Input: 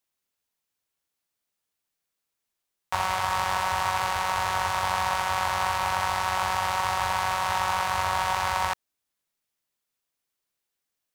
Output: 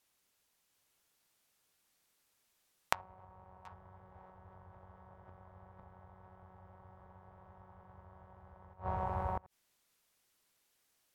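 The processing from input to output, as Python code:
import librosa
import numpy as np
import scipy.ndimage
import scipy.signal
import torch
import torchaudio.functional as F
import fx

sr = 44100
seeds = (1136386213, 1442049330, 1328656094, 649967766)

y = fx.env_lowpass_down(x, sr, base_hz=450.0, full_db=-22.0)
y = y + 10.0 ** (-5.5 / 20.0) * np.pad(y, (int(728 * sr / 1000.0), 0))[:len(y)]
y = fx.gate_flip(y, sr, shuts_db=-30.0, range_db=-27)
y = F.gain(torch.from_numpy(y), 6.5).numpy()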